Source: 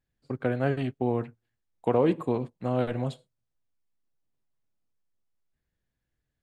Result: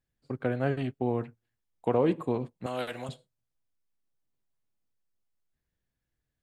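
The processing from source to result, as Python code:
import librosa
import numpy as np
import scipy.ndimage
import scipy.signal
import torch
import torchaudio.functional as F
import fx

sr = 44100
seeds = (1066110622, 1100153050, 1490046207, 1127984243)

y = fx.tilt_eq(x, sr, slope=4.5, at=(2.66, 3.09))
y = y * librosa.db_to_amplitude(-2.0)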